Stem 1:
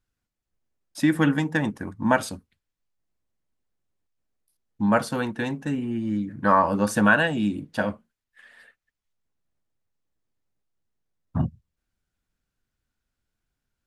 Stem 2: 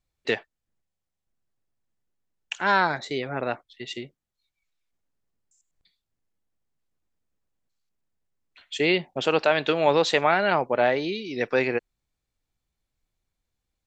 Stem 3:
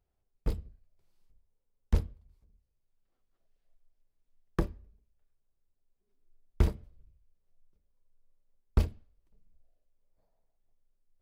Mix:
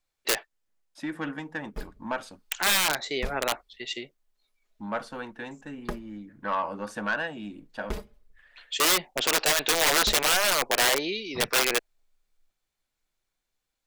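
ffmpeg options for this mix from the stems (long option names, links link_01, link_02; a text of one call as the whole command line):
ffmpeg -i stem1.wav -i stem2.wav -i stem3.wav -filter_complex "[0:a]aemphasis=mode=reproduction:type=50fm,asoftclip=type=tanh:threshold=-12dB,volume=-6dB[link_01];[1:a]aeval=exprs='(mod(7.5*val(0)+1,2)-1)/7.5':channel_layout=same,volume=2.5dB[link_02];[2:a]aecho=1:1:4.8:0.68,adelay=1300,volume=1dB[link_03];[link_01][link_02][link_03]amix=inputs=3:normalize=0,equalizer=frequency=77:width=0.32:gain=-14.5" out.wav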